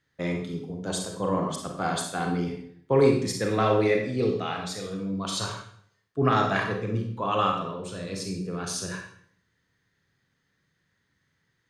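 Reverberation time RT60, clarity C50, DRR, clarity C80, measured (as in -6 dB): 0.60 s, 4.0 dB, 2.0 dB, 8.0 dB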